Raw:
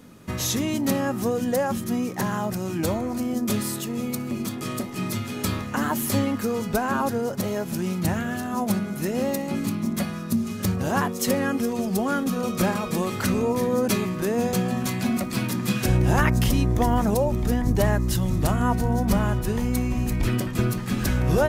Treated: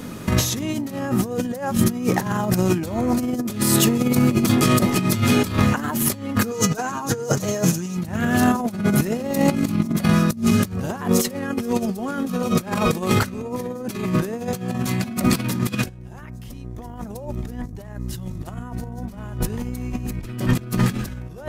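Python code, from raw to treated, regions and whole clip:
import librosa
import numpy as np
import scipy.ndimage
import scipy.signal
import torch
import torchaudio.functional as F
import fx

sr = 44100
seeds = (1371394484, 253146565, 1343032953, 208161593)

y = fx.chain(x, sr, fx.highpass(hz=86.0, slope=12),
    fx.peak_eq(hz=6500.0, db=12.0, octaves=0.48),
    fx.comb(ms=6.5, depth=0.69), at=(6.51, 7.97))
y = fx.dynamic_eq(y, sr, hz=120.0, q=0.72, threshold_db=-33.0, ratio=4.0, max_db=3)
y = fx.over_compress(y, sr, threshold_db=-29.0, ratio=-0.5)
y = y * 10.0 ** (7.5 / 20.0)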